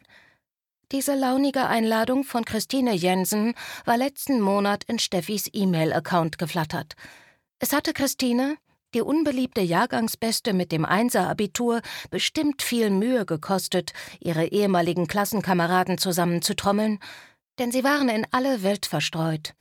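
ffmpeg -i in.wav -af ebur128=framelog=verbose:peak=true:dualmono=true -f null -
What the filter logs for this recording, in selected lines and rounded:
Integrated loudness:
  I:         -21.0 LUFS
  Threshold: -31.3 LUFS
Loudness range:
  LRA:         2.2 LU
  Threshold: -41.2 LUFS
  LRA low:   -22.7 LUFS
  LRA high:  -20.5 LUFS
True peak:
  Peak:       -6.6 dBFS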